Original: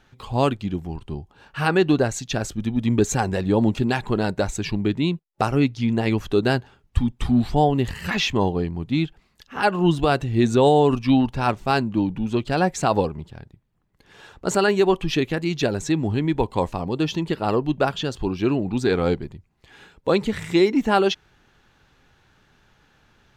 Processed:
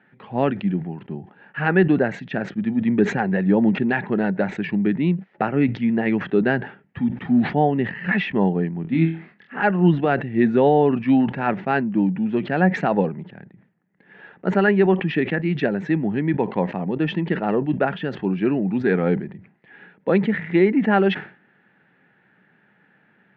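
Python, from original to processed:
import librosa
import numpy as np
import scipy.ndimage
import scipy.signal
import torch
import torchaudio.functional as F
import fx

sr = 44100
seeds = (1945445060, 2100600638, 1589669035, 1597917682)

y = fx.cabinet(x, sr, low_hz=150.0, low_slope=24, high_hz=2400.0, hz=(190.0, 1100.0, 1800.0), db=(8, -8, 8))
y = fx.room_flutter(y, sr, wall_m=4.2, rt60_s=0.25, at=(8.82, 9.63))
y = fx.sustainer(y, sr, db_per_s=140.0)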